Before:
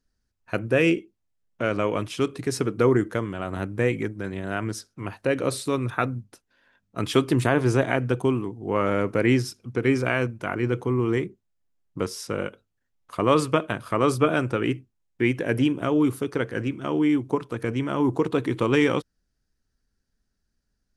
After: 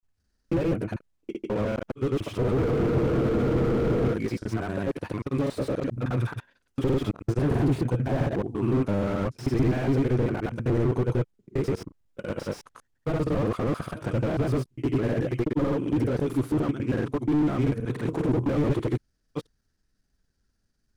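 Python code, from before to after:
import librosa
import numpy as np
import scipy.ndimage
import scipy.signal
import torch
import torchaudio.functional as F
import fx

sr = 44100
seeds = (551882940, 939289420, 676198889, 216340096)

y = fx.block_reorder(x, sr, ms=81.0, group=6)
y = fx.granulator(y, sr, seeds[0], grain_ms=100.0, per_s=20.0, spray_ms=100.0, spread_st=0)
y = fx.spec_freeze(y, sr, seeds[1], at_s=2.61, hold_s=1.51)
y = fx.slew_limit(y, sr, full_power_hz=18.0)
y = y * 10.0 ** (4.0 / 20.0)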